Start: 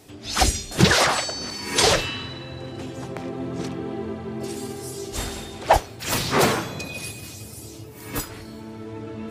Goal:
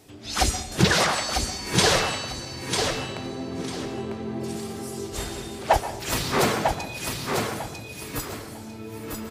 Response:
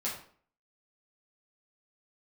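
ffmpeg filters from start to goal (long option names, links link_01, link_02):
-filter_complex "[0:a]aecho=1:1:948|1896|2844:0.596|0.149|0.0372,asplit=2[link_01][link_02];[1:a]atrim=start_sample=2205,adelay=122[link_03];[link_02][link_03]afir=irnorm=-1:irlink=0,volume=-15.5dB[link_04];[link_01][link_04]amix=inputs=2:normalize=0,volume=-3dB"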